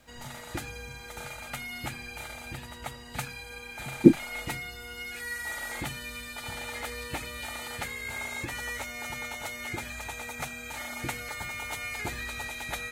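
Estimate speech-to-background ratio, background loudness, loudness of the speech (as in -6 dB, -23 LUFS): 14.5 dB, -36.5 LUFS, -22.0 LUFS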